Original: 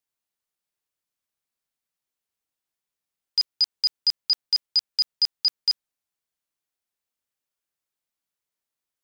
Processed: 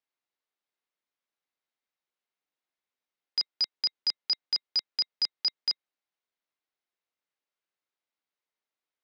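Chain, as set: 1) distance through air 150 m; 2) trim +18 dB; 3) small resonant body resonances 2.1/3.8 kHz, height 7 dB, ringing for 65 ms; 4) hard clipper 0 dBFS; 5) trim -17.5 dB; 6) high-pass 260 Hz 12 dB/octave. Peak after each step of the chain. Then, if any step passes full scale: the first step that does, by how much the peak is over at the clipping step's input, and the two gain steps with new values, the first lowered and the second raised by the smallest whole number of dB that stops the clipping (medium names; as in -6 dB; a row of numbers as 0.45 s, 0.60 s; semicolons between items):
-20.0 dBFS, -2.0 dBFS, -2.0 dBFS, -2.0 dBFS, -19.5 dBFS, -19.5 dBFS; nothing clips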